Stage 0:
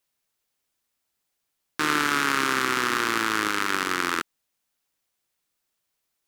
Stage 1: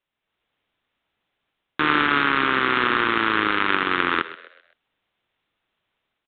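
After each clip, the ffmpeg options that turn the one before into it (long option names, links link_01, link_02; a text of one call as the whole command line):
ffmpeg -i in.wav -filter_complex "[0:a]dynaudnorm=framelen=110:gausssize=5:maxgain=8dB,aresample=8000,acrusher=bits=3:mode=log:mix=0:aa=0.000001,aresample=44100,asplit=5[link_01][link_02][link_03][link_04][link_05];[link_02]adelay=129,afreqshift=66,volume=-15.5dB[link_06];[link_03]adelay=258,afreqshift=132,volume=-23.5dB[link_07];[link_04]adelay=387,afreqshift=198,volume=-31.4dB[link_08];[link_05]adelay=516,afreqshift=264,volume=-39.4dB[link_09];[link_01][link_06][link_07][link_08][link_09]amix=inputs=5:normalize=0" out.wav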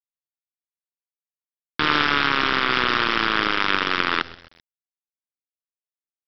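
ffmpeg -i in.wav -af "equalizer=frequency=3600:width_type=o:width=0.84:gain=6.5,aresample=11025,acrusher=bits=4:dc=4:mix=0:aa=0.000001,aresample=44100,volume=-1.5dB" out.wav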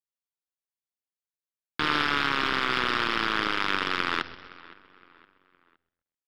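ffmpeg -i in.wav -filter_complex "[0:a]asplit=2[link_01][link_02];[link_02]adelay=515,lowpass=frequency=3300:poles=1,volume=-21dB,asplit=2[link_03][link_04];[link_04]adelay=515,lowpass=frequency=3300:poles=1,volume=0.43,asplit=2[link_05][link_06];[link_06]adelay=515,lowpass=frequency=3300:poles=1,volume=0.43[link_07];[link_01][link_03][link_05][link_07]amix=inputs=4:normalize=0,asplit=2[link_08][link_09];[link_09]asoftclip=type=hard:threshold=-16.5dB,volume=-8dB[link_10];[link_08][link_10]amix=inputs=2:normalize=0,volume=-7.5dB" out.wav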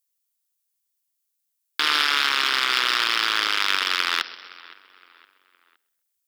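ffmpeg -i in.wav -af "highpass=390,crystalizer=i=7.5:c=0,volume=-3dB" out.wav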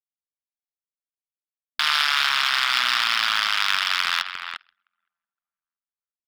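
ffmpeg -i in.wav -filter_complex "[0:a]afftfilt=real='re*(1-between(b*sr/4096,250,610))':imag='im*(1-between(b*sr/4096,250,610))':win_size=4096:overlap=0.75,anlmdn=10,asplit=2[link_01][link_02];[link_02]adelay=350,highpass=300,lowpass=3400,asoftclip=type=hard:threshold=-10.5dB,volume=-8dB[link_03];[link_01][link_03]amix=inputs=2:normalize=0" out.wav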